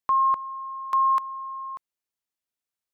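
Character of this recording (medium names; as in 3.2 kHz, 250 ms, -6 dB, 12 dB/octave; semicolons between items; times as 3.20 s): noise floor -90 dBFS; spectral tilt -4.0 dB/octave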